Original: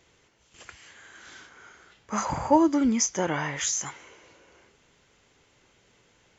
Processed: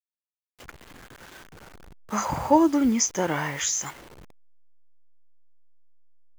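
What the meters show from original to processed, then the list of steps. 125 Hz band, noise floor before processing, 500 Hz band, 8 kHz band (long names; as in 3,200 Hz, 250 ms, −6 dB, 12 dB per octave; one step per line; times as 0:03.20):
+1.5 dB, −64 dBFS, +1.5 dB, can't be measured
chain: hold until the input has moved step −41.5 dBFS
level +1.5 dB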